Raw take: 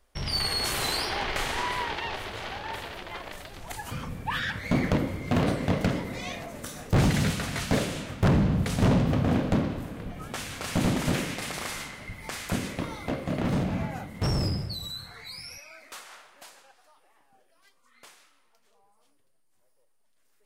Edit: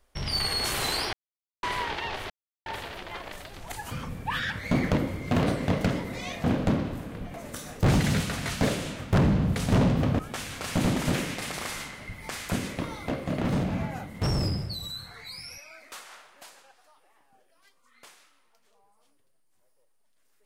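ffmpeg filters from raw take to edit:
ffmpeg -i in.wav -filter_complex "[0:a]asplit=8[link_01][link_02][link_03][link_04][link_05][link_06][link_07][link_08];[link_01]atrim=end=1.13,asetpts=PTS-STARTPTS,afade=type=out:start_time=1.126:duration=0.004:curve=hsin[link_09];[link_02]atrim=start=1.13:end=1.63,asetpts=PTS-STARTPTS,volume=0[link_10];[link_03]atrim=start=1.63:end=2.3,asetpts=PTS-STARTPTS,afade=type=in:duration=0.004:curve=hsin,afade=type=out:start_time=0.666:duration=0.004:curve=hsin[link_11];[link_04]atrim=start=2.3:end=2.66,asetpts=PTS-STARTPTS,volume=0[link_12];[link_05]atrim=start=2.66:end=6.442,asetpts=PTS-STARTPTS,afade=type=in:duration=0.004:curve=hsin[link_13];[link_06]atrim=start=9.288:end=10.192[link_14];[link_07]atrim=start=6.438:end=9.292[link_15];[link_08]atrim=start=10.188[link_16];[link_09][link_10][link_11][link_12][link_13]concat=n=5:v=0:a=1[link_17];[link_17][link_14]acrossfade=duration=0.004:curve1=hsin:curve2=hsin[link_18];[link_18][link_15]acrossfade=duration=0.004:curve1=hsin:curve2=hsin[link_19];[link_19][link_16]acrossfade=duration=0.004:curve1=hsin:curve2=hsin" out.wav

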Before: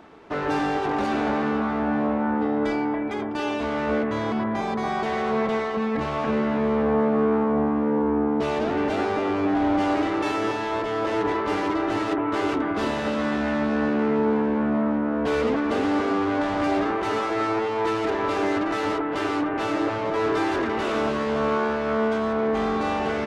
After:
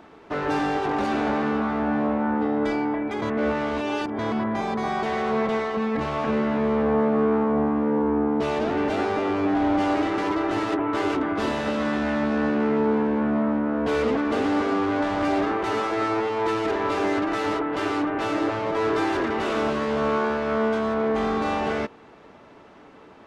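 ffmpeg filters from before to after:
ffmpeg -i in.wav -filter_complex "[0:a]asplit=4[link_01][link_02][link_03][link_04];[link_01]atrim=end=3.222[link_05];[link_02]atrim=start=3.218:end=4.192,asetpts=PTS-STARTPTS,areverse[link_06];[link_03]atrim=start=4.188:end=10.182[link_07];[link_04]atrim=start=11.568[link_08];[link_05][link_06]acrossfade=duration=0.004:curve1=hsin:curve2=hsin[link_09];[link_09][link_07]acrossfade=duration=0.004:curve1=hsin:curve2=hsin[link_10];[link_10][link_08]acrossfade=duration=0.004:curve1=hsin:curve2=hsin" out.wav

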